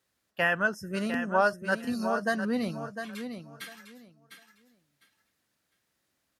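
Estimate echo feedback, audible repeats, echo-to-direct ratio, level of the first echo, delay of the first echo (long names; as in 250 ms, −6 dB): 20%, 2, −9.0 dB, −9.0 dB, 703 ms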